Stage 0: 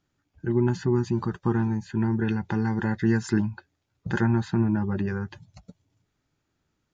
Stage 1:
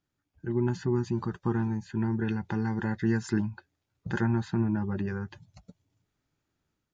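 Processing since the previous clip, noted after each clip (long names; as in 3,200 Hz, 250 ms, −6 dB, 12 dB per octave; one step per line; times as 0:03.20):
automatic gain control gain up to 4 dB
level −8 dB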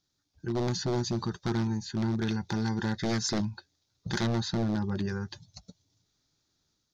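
wave folding −22 dBFS
flat-topped bell 4,800 Hz +14.5 dB 1.1 octaves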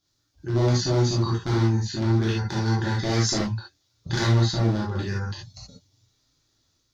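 reverb whose tail is shaped and stops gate 100 ms flat, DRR −5.5 dB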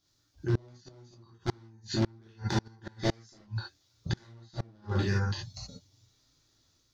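gate with flip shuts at −16 dBFS, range −33 dB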